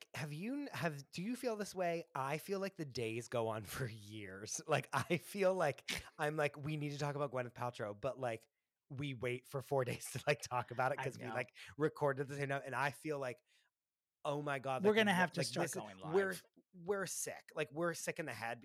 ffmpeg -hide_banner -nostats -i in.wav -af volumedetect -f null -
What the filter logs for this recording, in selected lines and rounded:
mean_volume: -40.3 dB
max_volume: -20.4 dB